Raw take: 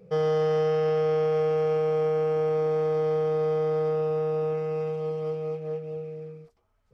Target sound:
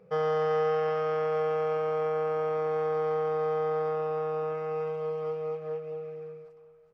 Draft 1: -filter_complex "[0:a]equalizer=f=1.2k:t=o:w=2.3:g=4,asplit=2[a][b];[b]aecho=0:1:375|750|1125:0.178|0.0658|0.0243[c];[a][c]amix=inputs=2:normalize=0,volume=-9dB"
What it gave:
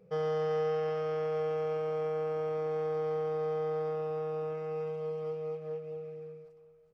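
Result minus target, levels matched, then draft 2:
1000 Hz band -3.5 dB
-filter_complex "[0:a]equalizer=f=1.2k:t=o:w=2.3:g=13,asplit=2[a][b];[b]aecho=0:1:375|750|1125:0.178|0.0658|0.0243[c];[a][c]amix=inputs=2:normalize=0,volume=-9dB"

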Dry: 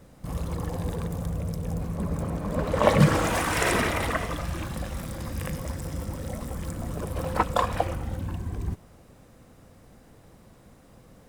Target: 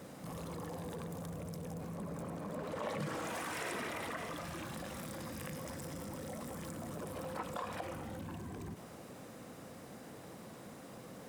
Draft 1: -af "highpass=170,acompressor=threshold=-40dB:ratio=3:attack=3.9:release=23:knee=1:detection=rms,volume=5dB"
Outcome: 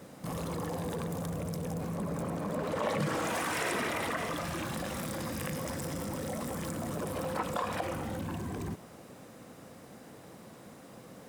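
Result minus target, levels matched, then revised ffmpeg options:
compressor: peak gain reduction -7.5 dB
-af "highpass=170,acompressor=threshold=-51.5dB:ratio=3:attack=3.9:release=23:knee=1:detection=rms,volume=5dB"

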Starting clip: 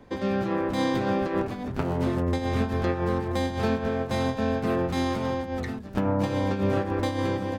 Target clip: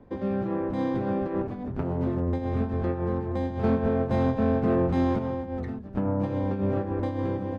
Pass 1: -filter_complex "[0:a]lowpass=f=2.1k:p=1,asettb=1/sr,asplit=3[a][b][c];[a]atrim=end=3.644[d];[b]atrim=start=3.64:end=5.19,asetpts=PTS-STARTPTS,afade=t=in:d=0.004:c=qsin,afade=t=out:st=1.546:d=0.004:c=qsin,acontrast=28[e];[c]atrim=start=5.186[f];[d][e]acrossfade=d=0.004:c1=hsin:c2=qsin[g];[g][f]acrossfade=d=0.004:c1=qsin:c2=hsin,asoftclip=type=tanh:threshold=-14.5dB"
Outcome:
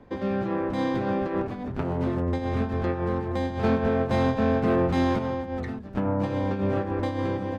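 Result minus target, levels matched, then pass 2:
2000 Hz band +5.5 dB
-filter_complex "[0:a]lowpass=f=650:p=1,asettb=1/sr,asplit=3[a][b][c];[a]atrim=end=3.644[d];[b]atrim=start=3.64:end=5.19,asetpts=PTS-STARTPTS,afade=t=in:d=0.004:c=qsin,afade=t=out:st=1.546:d=0.004:c=qsin,acontrast=28[e];[c]atrim=start=5.186[f];[d][e]acrossfade=d=0.004:c1=hsin:c2=qsin[g];[g][f]acrossfade=d=0.004:c1=qsin:c2=hsin,asoftclip=type=tanh:threshold=-14.5dB"

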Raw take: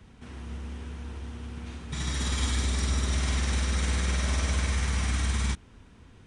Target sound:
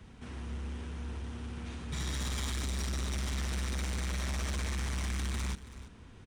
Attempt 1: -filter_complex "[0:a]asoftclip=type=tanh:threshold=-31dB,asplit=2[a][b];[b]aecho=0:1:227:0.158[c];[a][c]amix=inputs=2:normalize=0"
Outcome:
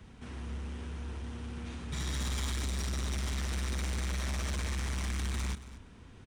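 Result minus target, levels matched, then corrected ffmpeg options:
echo 0.102 s early
-filter_complex "[0:a]asoftclip=type=tanh:threshold=-31dB,asplit=2[a][b];[b]aecho=0:1:329:0.158[c];[a][c]amix=inputs=2:normalize=0"

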